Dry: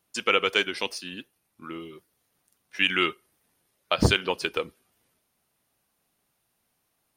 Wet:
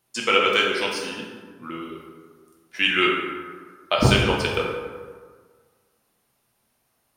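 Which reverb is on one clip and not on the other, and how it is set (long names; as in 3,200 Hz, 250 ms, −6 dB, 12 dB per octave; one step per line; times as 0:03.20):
dense smooth reverb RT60 1.6 s, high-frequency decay 0.5×, DRR −2 dB
level +1 dB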